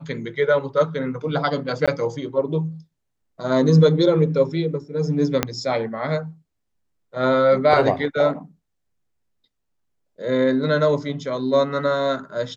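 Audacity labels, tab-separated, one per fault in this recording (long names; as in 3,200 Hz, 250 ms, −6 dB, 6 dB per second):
1.860000	1.880000	drop-out 16 ms
5.430000	5.430000	click −3 dBFS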